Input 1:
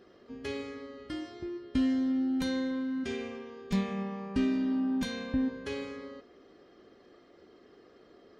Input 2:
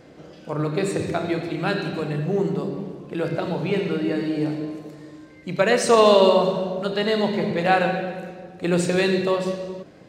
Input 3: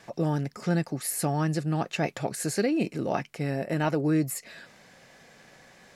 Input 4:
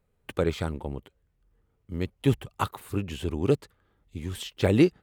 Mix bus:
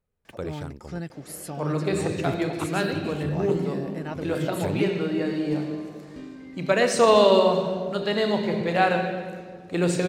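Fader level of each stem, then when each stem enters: −13.5, −2.0, −8.0, −8.0 decibels; 1.80, 1.10, 0.25, 0.00 seconds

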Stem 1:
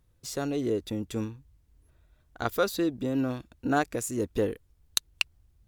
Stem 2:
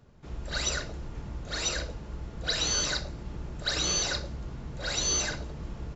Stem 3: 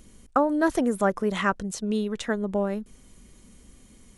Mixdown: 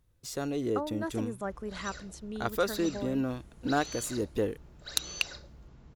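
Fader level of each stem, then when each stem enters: −2.5, −14.5, −13.0 decibels; 0.00, 1.20, 0.40 seconds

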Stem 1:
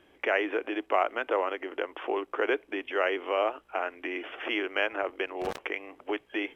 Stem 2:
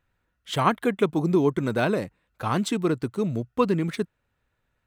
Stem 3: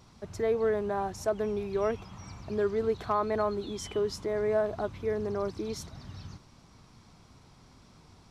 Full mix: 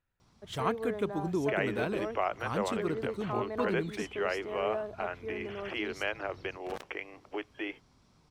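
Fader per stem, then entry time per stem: −5.5, −10.5, −8.5 decibels; 1.25, 0.00, 0.20 seconds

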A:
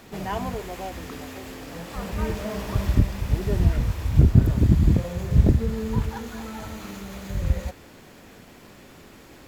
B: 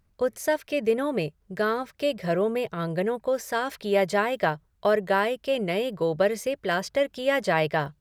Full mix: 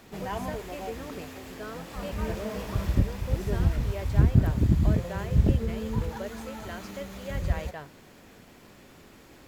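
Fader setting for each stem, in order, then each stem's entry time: −4.5, −15.5 decibels; 0.00, 0.00 seconds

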